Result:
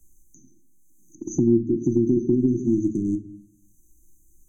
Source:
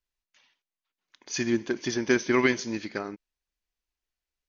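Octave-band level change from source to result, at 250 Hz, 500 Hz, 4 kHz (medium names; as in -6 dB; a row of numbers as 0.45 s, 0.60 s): +8.5 dB, +3.0 dB, under -40 dB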